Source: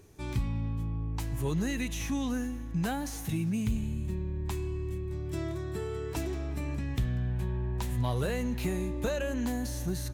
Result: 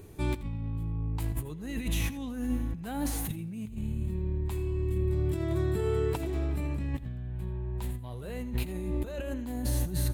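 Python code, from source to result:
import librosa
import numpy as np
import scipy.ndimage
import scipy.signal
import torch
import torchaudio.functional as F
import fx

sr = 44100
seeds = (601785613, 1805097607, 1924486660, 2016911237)

y = fx.peak_eq(x, sr, hz=5900.0, db=-10.5, octaves=0.61)
y = fx.over_compress(y, sr, threshold_db=-35.0, ratio=-0.5)
y = fx.peak_eq(y, sr, hz=1500.0, db=-3.5, octaves=2.7)
y = fx.notch(y, sr, hz=1700.0, q=28.0)
y = y + 10.0 ** (-16.5 / 20.0) * np.pad(y, (int(84 * sr / 1000.0), 0))[:len(y)]
y = F.gain(torch.from_numpy(y), 4.5).numpy()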